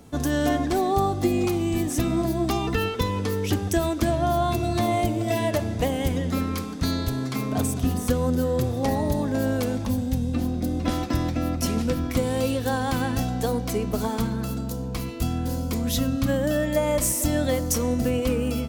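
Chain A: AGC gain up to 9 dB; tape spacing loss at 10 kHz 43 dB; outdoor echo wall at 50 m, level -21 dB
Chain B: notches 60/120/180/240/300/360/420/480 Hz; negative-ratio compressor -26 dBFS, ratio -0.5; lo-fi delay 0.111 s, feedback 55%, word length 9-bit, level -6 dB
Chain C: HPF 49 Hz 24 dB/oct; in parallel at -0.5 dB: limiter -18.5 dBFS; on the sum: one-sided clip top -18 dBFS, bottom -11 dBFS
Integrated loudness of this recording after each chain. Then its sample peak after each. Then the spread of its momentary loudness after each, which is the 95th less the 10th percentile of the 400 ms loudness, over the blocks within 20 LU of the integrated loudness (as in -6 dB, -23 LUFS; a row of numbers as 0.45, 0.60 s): -19.0, -26.5, -21.5 LUFS; -4.0, -10.0, -10.0 dBFS; 3, 4, 3 LU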